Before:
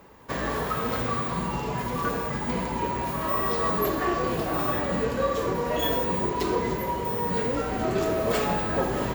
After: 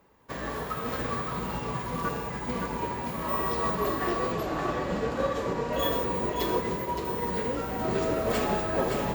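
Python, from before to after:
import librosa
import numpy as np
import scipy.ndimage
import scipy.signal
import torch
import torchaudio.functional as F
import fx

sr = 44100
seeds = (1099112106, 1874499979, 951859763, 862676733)

y = fx.lowpass(x, sr, hz=8700.0, slope=12, at=(3.75, 5.73))
y = y + 10.0 ** (-4.5 / 20.0) * np.pad(y, (int(569 * sr / 1000.0), 0))[:len(y)]
y = fx.upward_expand(y, sr, threshold_db=-39.0, expansion=1.5)
y = y * 10.0 ** (-2.0 / 20.0)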